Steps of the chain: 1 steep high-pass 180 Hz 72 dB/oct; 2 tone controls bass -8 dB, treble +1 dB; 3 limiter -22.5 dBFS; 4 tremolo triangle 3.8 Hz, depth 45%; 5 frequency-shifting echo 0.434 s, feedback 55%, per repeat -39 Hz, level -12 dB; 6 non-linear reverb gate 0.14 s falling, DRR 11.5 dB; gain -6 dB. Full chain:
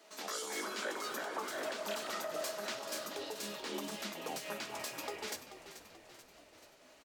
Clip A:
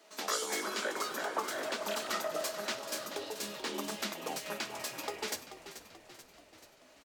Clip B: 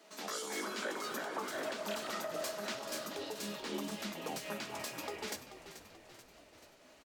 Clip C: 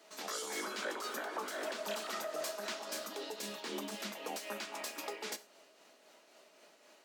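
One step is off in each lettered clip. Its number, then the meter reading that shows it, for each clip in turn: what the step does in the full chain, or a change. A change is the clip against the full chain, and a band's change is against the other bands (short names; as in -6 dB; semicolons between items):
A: 3, mean gain reduction 1.5 dB; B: 2, 125 Hz band +5.0 dB; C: 5, echo-to-direct -8.0 dB to -11.5 dB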